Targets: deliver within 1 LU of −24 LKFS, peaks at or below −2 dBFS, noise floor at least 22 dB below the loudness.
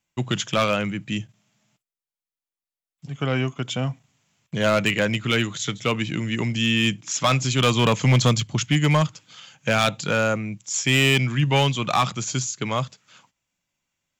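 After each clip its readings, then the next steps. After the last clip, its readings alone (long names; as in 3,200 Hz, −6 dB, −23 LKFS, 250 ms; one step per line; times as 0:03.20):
share of clipped samples 0.7%; peaks flattened at −12.5 dBFS; integrated loudness −22.0 LKFS; sample peak −12.5 dBFS; target loudness −24.0 LKFS
→ clipped peaks rebuilt −12.5 dBFS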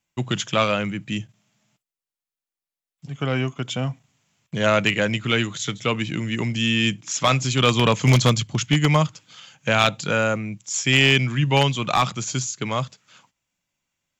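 share of clipped samples 0.0%; integrated loudness −21.5 LKFS; sample peak −3.5 dBFS; target loudness −24.0 LKFS
→ level −2.5 dB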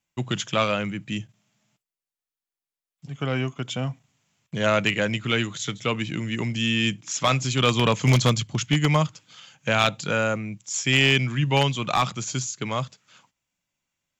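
integrated loudness −24.0 LKFS; sample peak −6.0 dBFS; background noise floor −92 dBFS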